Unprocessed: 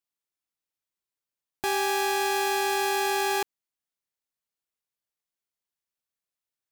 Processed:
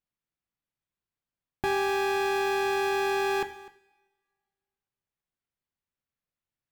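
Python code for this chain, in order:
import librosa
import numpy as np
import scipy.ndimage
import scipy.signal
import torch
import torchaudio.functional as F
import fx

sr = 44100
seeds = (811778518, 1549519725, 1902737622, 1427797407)

y = fx.bass_treble(x, sr, bass_db=10, treble_db=-12)
y = y + 10.0 ** (-20.0 / 20.0) * np.pad(y, (int(252 * sr / 1000.0), 0))[:len(y)]
y = fx.rev_double_slope(y, sr, seeds[0], early_s=0.53, late_s=1.7, knee_db=-21, drr_db=9.5)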